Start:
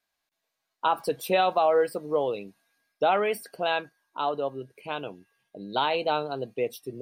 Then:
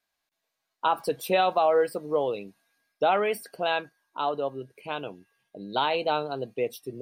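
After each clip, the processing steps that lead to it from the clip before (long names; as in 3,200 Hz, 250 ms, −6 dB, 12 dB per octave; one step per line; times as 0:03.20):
no processing that can be heard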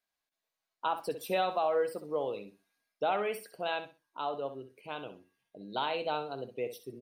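repeating echo 64 ms, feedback 21%, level −11 dB
level −7.5 dB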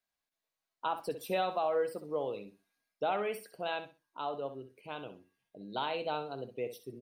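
low-shelf EQ 260 Hz +4 dB
level −2.5 dB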